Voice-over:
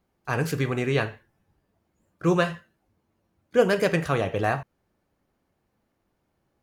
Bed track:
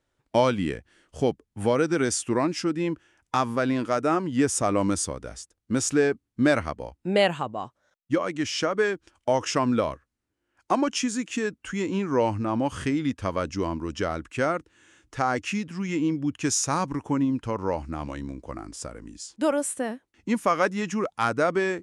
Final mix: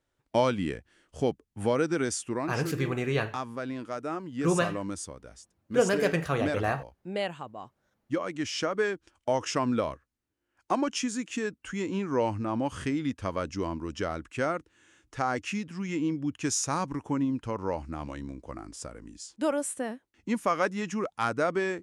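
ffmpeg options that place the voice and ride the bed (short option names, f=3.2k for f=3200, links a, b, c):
-filter_complex "[0:a]adelay=2200,volume=-4dB[a];[1:a]volume=3dB,afade=t=out:st=1.87:d=0.75:silence=0.446684,afade=t=in:st=7.47:d=1.03:silence=0.473151[b];[a][b]amix=inputs=2:normalize=0"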